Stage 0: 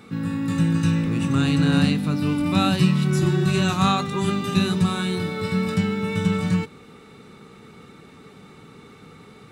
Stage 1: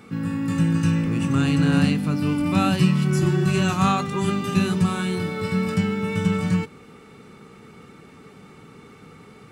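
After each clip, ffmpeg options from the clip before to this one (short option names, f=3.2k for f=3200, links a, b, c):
-af "bandreject=f=3.8k:w=6.7"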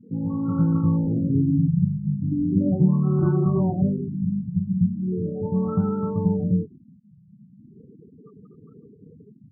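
-af "afftfilt=real='re*gte(hypot(re,im),0.0178)':imag='im*gte(hypot(re,im),0.0178)':win_size=1024:overlap=0.75,afftfilt=real='re*lt(b*sr/1024,210*pow(1500/210,0.5+0.5*sin(2*PI*0.38*pts/sr)))':imag='im*lt(b*sr/1024,210*pow(1500/210,0.5+0.5*sin(2*PI*0.38*pts/sr)))':win_size=1024:overlap=0.75"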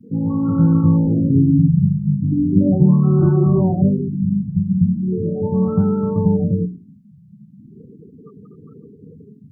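-filter_complex "[0:a]bandreject=f=60:t=h:w=6,bandreject=f=120:t=h:w=6,bandreject=f=180:t=h:w=6,bandreject=f=240:t=h:w=6,bandreject=f=300:t=h:w=6,bandreject=f=360:t=h:w=6,bandreject=f=420:t=h:w=6,acrossover=split=260|730[a][b][c];[c]alimiter=level_in=15.5dB:limit=-24dB:level=0:latency=1:release=37,volume=-15.5dB[d];[a][b][d]amix=inputs=3:normalize=0,volume=7dB"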